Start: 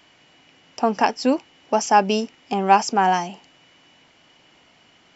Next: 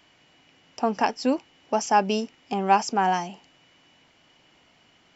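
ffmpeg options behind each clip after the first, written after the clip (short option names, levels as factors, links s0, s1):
-af "lowshelf=f=120:g=4,volume=0.596"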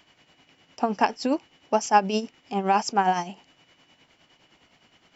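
-af "tremolo=f=9.7:d=0.6,volume=1.33"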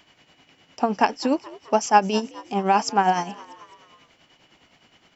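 -filter_complex "[0:a]asplit=5[s0][s1][s2][s3][s4];[s1]adelay=213,afreqshift=78,volume=0.0944[s5];[s2]adelay=426,afreqshift=156,volume=0.0507[s6];[s3]adelay=639,afreqshift=234,volume=0.0275[s7];[s4]adelay=852,afreqshift=312,volume=0.0148[s8];[s0][s5][s6][s7][s8]amix=inputs=5:normalize=0,volume=1.33"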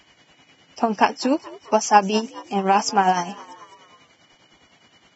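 -af "volume=1.19" -ar 22050 -c:a libvorbis -b:a 16k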